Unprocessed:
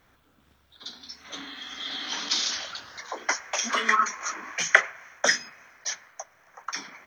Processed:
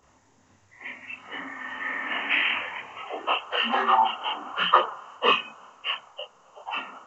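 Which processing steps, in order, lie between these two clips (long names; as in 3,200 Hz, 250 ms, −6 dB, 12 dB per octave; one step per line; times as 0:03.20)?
partials spread apart or drawn together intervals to 77%
multi-voice chorus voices 4, 0.73 Hz, delay 29 ms, depth 2.5 ms
level +7 dB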